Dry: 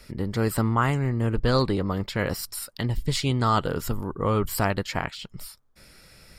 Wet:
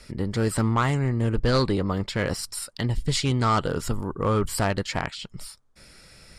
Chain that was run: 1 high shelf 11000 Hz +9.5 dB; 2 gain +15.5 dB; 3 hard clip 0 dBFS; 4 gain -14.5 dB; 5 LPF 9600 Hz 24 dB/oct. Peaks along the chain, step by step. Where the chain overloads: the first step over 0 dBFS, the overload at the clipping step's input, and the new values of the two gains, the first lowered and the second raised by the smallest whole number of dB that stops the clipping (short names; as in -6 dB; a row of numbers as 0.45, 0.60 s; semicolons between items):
-8.5, +7.0, 0.0, -14.5, -14.0 dBFS; step 2, 7.0 dB; step 2 +8.5 dB, step 4 -7.5 dB